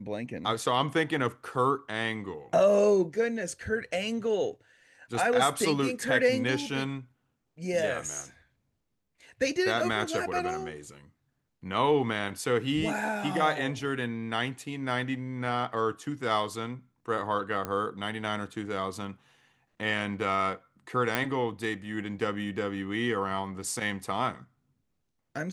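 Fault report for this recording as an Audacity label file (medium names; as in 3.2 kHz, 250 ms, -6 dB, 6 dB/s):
17.650000	17.650000	pop -17 dBFS
21.150000	21.150000	pop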